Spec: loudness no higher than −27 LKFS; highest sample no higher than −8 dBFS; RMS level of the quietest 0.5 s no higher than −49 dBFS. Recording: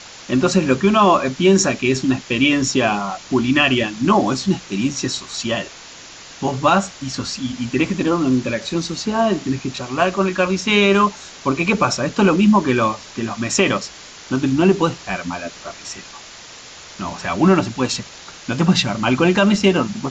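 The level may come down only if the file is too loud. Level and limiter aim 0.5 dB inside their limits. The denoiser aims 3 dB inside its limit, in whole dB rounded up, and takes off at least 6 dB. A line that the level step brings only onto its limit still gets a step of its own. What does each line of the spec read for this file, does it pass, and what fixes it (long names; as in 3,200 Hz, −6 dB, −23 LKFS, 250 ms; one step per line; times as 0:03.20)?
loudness −18.0 LKFS: out of spec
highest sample −3.5 dBFS: out of spec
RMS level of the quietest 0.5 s −39 dBFS: out of spec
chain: broadband denoise 6 dB, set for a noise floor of −39 dBFS
level −9.5 dB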